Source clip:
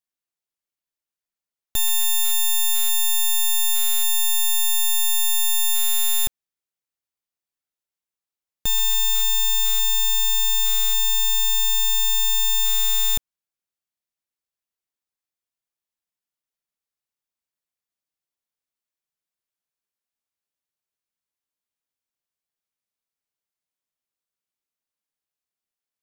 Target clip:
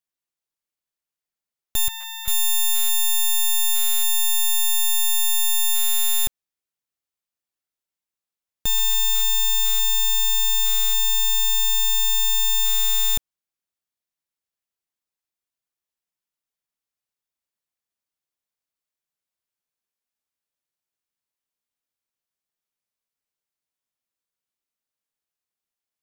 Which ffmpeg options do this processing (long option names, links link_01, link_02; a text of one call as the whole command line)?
ffmpeg -i in.wav -filter_complex "[0:a]asettb=1/sr,asplit=3[link_01][link_02][link_03];[link_01]atrim=end=1.884[link_04];[link_02]atrim=start=1.88:end=2.28,asetpts=PTS-STARTPTS,afade=type=in:duration=0.004:curve=qsin,afade=type=out:start_time=0.396:duration=0.004:curve=qsin,acrossover=split=460 2900:gain=0.0631 1 0.158[link_05][link_06][link_07];[link_05][link_06][link_07]amix=inputs=3:normalize=0[link_08];[link_03]atrim=start=2.276[link_09];[link_04][link_08]acrossfade=duration=0.004:curve1=hsin:curve2=qsin[link_10];[link_10][link_09]acrossfade=duration=0.004:curve1=qsin:curve2=hsin" out.wav